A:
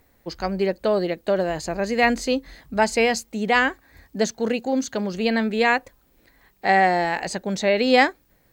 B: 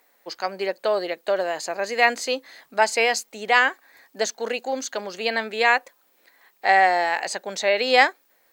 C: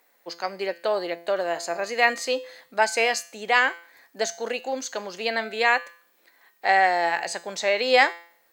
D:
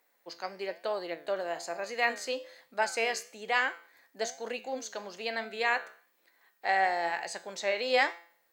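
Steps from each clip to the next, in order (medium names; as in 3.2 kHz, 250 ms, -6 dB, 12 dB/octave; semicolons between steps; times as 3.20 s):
high-pass 570 Hz 12 dB/octave; trim +2 dB
feedback comb 170 Hz, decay 0.5 s, harmonics all, mix 60%; trim +5 dB
flange 1.1 Hz, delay 8.1 ms, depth 7.8 ms, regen +81%; trim -3.5 dB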